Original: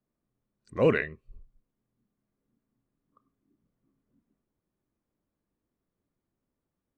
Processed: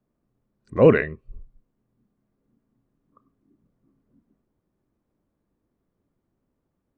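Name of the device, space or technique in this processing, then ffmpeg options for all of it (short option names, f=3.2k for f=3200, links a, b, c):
through cloth: -af "highshelf=f=2.5k:g=-14,volume=9dB"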